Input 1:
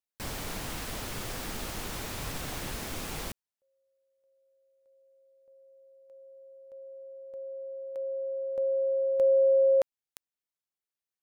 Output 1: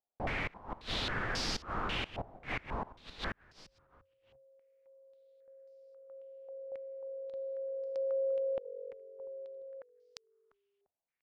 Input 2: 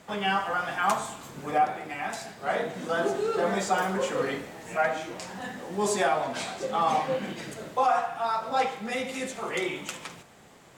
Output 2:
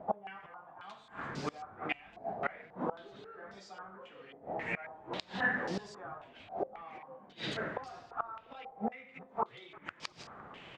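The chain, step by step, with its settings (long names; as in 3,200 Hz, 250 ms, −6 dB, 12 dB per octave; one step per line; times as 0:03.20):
gate with flip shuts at −25 dBFS, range −26 dB
echo with shifted repeats 346 ms, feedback 43%, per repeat −46 Hz, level −19 dB
low-pass on a step sequencer 3.7 Hz 730–5,000 Hz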